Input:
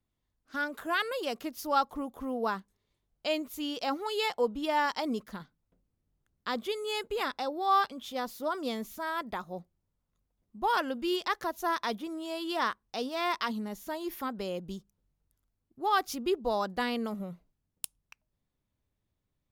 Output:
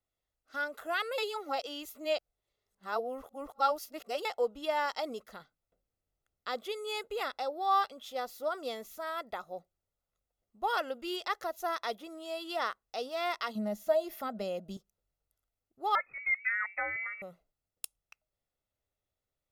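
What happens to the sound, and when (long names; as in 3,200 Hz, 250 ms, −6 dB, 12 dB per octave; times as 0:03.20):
0:01.18–0:04.25: reverse
0:13.55–0:14.77: hollow resonant body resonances 210/640 Hz, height 16 dB, ringing for 85 ms
0:15.95–0:17.22: voice inversion scrambler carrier 2,500 Hz
whole clip: low shelf with overshoot 270 Hz −8.5 dB, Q 1.5; comb filter 1.5 ms, depth 47%; level −4 dB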